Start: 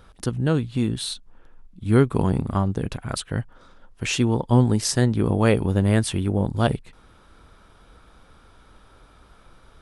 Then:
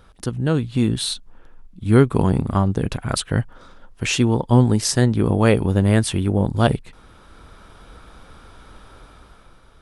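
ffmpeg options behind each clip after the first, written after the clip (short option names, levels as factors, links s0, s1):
-af "dynaudnorm=f=110:g=13:m=2.37"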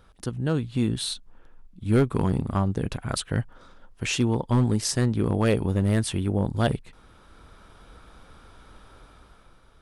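-af "volume=2.51,asoftclip=hard,volume=0.398,volume=0.531"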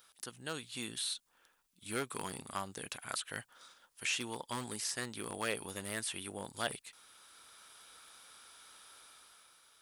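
-filter_complex "[0:a]aderivative,acrossover=split=2500[s0][s1];[s1]acompressor=threshold=0.00501:ratio=4:attack=1:release=60[s2];[s0][s2]amix=inputs=2:normalize=0,volume=2.51"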